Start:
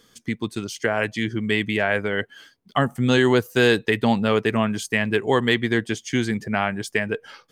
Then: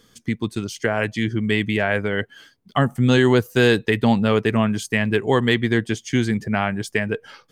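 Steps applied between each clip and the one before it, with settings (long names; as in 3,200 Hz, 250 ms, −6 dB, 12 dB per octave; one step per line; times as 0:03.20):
low-shelf EQ 190 Hz +7 dB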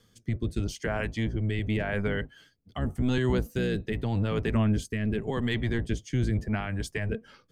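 sub-octave generator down 1 octave, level +2 dB
brickwall limiter −12 dBFS, peak gain reduction 8.5 dB
rotating-speaker cabinet horn 0.85 Hz
level −5.5 dB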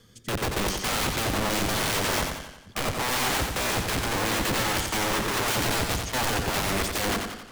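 wrap-around overflow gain 29 dB
feedback echo with a swinging delay time 89 ms, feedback 52%, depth 71 cents, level −5 dB
level +6.5 dB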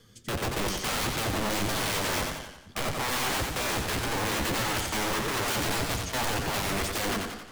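flanger 1.7 Hz, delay 6 ms, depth 8.6 ms, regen +54%
soft clipping −25 dBFS, distortion −19 dB
level +3 dB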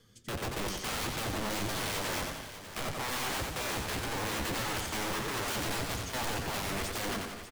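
single-tap delay 594 ms −12.5 dB
level −5.5 dB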